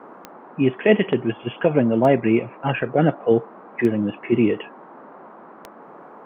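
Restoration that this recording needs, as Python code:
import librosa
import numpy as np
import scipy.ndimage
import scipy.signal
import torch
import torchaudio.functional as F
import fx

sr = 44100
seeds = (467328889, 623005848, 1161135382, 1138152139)

y = fx.fix_declick_ar(x, sr, threshold=10.0)
y = fx.noise_reduce(y, sr, print_start_s=5.29, print_end_s=5.79, reduce_db=21.0)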